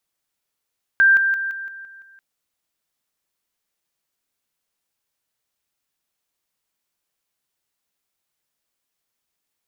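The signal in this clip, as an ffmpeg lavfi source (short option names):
-f lavfi -i "aevalsrc='pow(10,(-10-6*floor(t/0.17))/20)*sin(2*PI*1580*t)':d=1.19:s=44100"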